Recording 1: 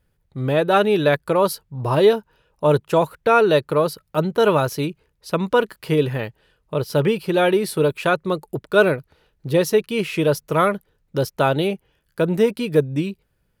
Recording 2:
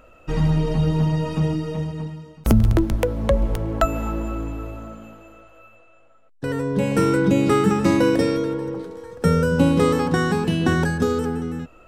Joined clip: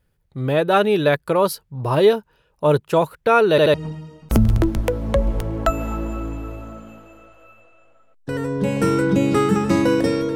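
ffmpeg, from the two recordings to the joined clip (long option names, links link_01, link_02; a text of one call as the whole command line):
ffmpeg -i cue0.wav -i cue1.wav -filter_complex "[0:a]apad=whole_dur=10.35,atrim=end=10.35,asplit=3[link_01][link_02][link_03];[link_01]atrim=end=3.582[link_04];[link_02]atrim=start=3.498:end=3.582[link_05];[link_03]atrim=start=3.498:end=3.582[link_06];[1:a]atrim=start=1.888:end=8.5[link_07];[link_04][link_05]acrossfade=duration=0.004:curve1=hsin:curve2=hsin[link_08];[link_08][link_06]acrossfade=duration=0.004:curve1=hsin:curve2=hsin[link_09];[link_09][link_07]acrossfade=duration=0.004:curve1=hsin:curve2=hsin" out.wav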